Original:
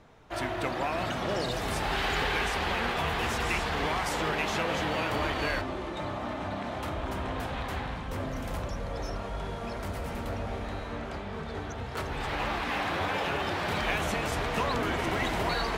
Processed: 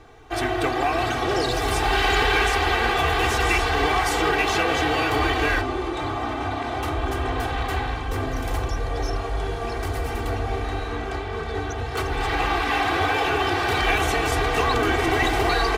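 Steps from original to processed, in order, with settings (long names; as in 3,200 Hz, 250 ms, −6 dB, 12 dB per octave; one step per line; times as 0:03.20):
comb filter 2.6 ms, depth 93%
level +5.5 dB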